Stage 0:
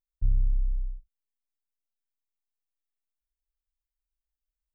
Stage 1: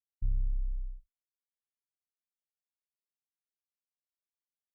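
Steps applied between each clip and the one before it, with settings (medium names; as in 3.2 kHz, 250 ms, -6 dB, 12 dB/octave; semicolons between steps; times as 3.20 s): expander -42 dBFS; trim -6.5 dB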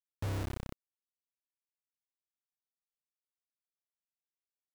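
high-pass 79 Hz 24 dB/octave; compression 10:1, threshold -45 dBFS, peak gain reduction 7 dB; bit crusher 8-bit; trim +11 dB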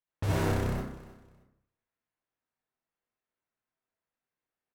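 level-controlled noise filter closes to 2.3 kHz, open at -35.5 dBFS; feedback delay 312 ms, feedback 26%, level -18 dB; reverberation RT60 0.70 s, pre-delay 52 ms, DRR -6 dB; trim +4 dB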